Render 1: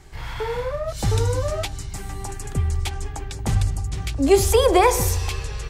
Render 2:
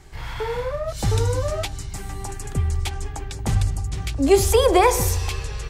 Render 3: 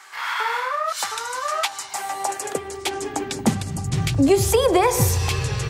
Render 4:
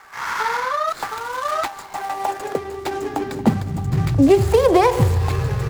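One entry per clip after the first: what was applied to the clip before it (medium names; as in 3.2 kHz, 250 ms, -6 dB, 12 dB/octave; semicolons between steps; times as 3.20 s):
no audible change
compression 4:1, threshold -23 dBFS, peak gain reduction 11.5 dB; high-pass sweep 1.2 kHz -> 120 Hz, 1.49–4.16 s; trim +7.5 dB
median filter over 15 samples; trim +3.5 dB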